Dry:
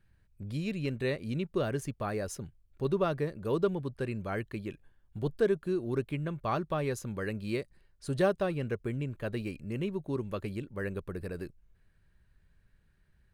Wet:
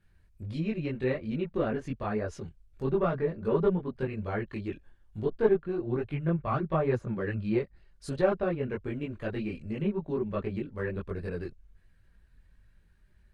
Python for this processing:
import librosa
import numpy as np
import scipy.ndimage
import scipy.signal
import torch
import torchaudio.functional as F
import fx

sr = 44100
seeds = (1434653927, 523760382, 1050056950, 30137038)

y = fx.diode_clip(x, sr, knee_db=-18.5)
y = fx.chorus_voices(y, sr, voices=6, hz=1.2, base_ms=21, depth_ms=3.0, mix_pct=55)
y = fx.env_lowpass_down(y, sr, base_hz=2200.0, full_db=-33.0)
y = y * librosa.db_to_amplitude(5.5)